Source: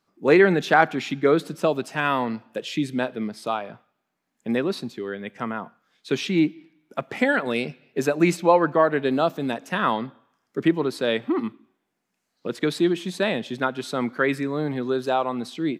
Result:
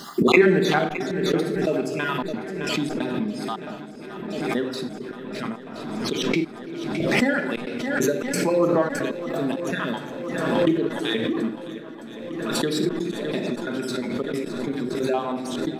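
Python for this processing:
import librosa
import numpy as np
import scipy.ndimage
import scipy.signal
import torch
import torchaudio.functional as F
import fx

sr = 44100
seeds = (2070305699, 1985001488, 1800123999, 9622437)

p1 = fx.spec_dropout(x, sr, seeds[0], share_pct=38)
p2 = fx.high_shelf(p1, sr, hz=2200.0, db=11.5)
p3 = fx.room_shoebox(p2, sr, seeds[1], volume_m3=1500.0, walls='mixed', distance_m=1.3)
p4 = fx.step_gate(p3, sr, bpm=135, pattern='xx.xxxxx.x..', floor_db=-24.0, edge_ms=4.5)
p5 = fx.backlash(p4, sr, play_db=-21.5)
p6 = p4 + (p5 * 10.0 ** (-9.5 / 20.0))
p7 = fx.peak_eq(p6, sr, hz=270.0, db=9.5, octaves=1.8)
p8 = p7 + fx.echo_swing(p7, sr, ms=1022, ratio=1.5, feedback_pct=68, wet_db=-16.5, dry=0)
p9 = fx.pre_swell(p8, sr, db_per_s=31.0)
y = p9 * 10.0 ** (-11.0 / 20.0)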